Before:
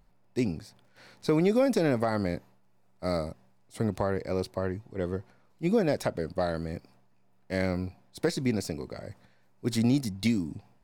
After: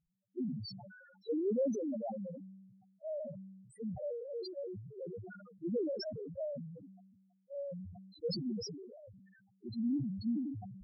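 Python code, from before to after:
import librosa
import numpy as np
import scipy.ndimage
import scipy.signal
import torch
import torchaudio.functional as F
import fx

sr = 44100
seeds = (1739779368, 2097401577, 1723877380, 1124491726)

y = fx.highpass(x, sr, hz=180.0, slope=6)
y = fx.spec_topn(y, sr, count=1)
y = fx.sustainer(y, sr, db_per_s=41.0)
y = y * librosa.db_to_amplitude(-2.0)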